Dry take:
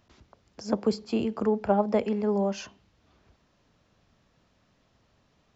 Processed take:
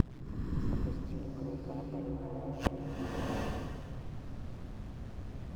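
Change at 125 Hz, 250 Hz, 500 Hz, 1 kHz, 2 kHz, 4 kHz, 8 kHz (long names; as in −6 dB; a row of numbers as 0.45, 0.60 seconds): +3.5 dB, −8.5 dB, −14.0 dB, −11.0 dB, −3.0 dB, −7.5 dB, can't be measured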